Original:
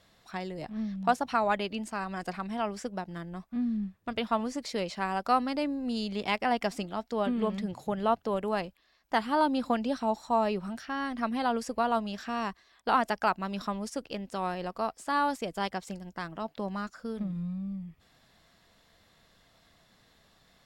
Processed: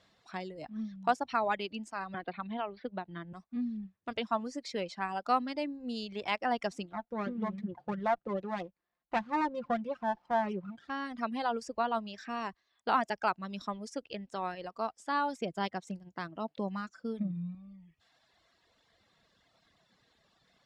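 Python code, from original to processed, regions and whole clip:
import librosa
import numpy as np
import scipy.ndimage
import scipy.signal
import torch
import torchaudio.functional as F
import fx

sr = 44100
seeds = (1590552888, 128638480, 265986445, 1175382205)

y = fx.chain(x, sr, fx.steep_lowpass(hz=4300.0, slope=72),
    fx.band_squash(depth_pct=70), at=(2.14, 3.33))
y = fx.chain(y, sr, fx.air_absorb(metres=440.0),
    fx.comb(ms=5.7, depth=0.62),
    fx.running_max(window=9), at=(6.92, 10.9))
y = fx.chain(y, sr, fx.highpass(hz=80.0, slope=12),
    fx.low_shelf(hz=370.0, db=6.0), at=(15.41, 17.55))
y = scipy.signal.sosfilt(scipy.signal.butter(2, 6700.0, 'lowpass', fs=sr, output='sos'), y)
y = fx.dereverb_blind(y, sr, rt60_s=1.5)
y = fx.highpass(y, sr, hz=98.0, slope=6)
y = y * 10.0 ** (-2.5 / 20.0)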